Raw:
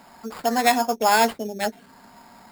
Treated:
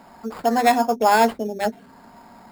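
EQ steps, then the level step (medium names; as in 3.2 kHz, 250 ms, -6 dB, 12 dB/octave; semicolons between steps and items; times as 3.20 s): tilt shelf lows +4.5 dB, about 1.5 kHz; hum notches 50/100/150/200/250 Hz; 0.0 dB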